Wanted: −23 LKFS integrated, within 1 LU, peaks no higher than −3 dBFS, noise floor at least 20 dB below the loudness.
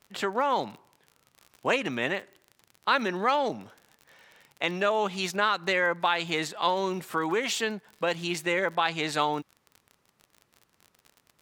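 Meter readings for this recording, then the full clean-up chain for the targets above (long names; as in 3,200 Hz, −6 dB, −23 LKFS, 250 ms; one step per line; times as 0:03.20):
crackle rate 40 per second; integrated loudness −28.0 LKFS; sample peak −9.5 dBFS; target loudness −23.0 LKFS
→ click removal
level +5 dB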